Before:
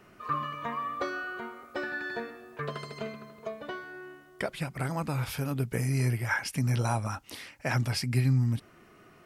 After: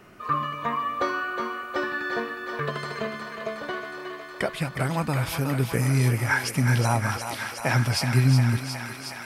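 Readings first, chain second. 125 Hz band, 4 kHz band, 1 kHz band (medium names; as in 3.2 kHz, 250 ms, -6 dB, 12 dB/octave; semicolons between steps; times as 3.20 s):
+5.5 dB, +7.5 dB, +7.0 dB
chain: thinning echo 364 ms, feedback 83%, high-pass 430 Hz, level -7 dB; trim +5.5 dB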